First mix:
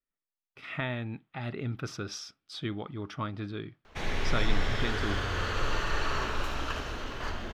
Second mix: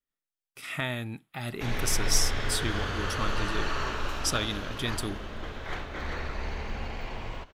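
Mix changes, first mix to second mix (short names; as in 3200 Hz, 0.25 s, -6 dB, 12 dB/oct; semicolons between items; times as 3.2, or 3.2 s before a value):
speech: remove air absorption 260 m; background: entry -2.35 s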